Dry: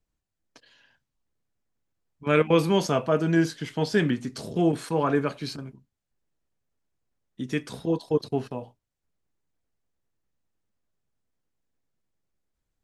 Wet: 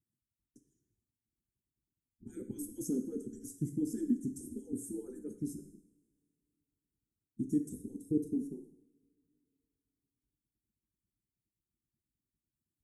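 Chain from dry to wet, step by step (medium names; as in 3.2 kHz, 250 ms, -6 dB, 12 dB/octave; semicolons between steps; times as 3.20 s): harmonic-percussive separation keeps percussive; inverse Chebyshev band-stop 610–4600 Hz, stop band 40 dB; two-slope reverb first 0.71 s, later 2.7 s, from -25 dB, DRR 6.5 dB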